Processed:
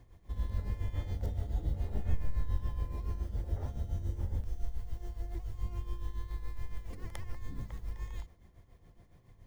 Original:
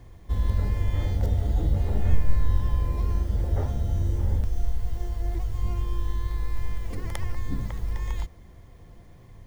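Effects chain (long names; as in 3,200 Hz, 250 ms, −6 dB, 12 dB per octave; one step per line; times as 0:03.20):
amplitude tremolo 7.1 Hz, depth 65%
level −8 dB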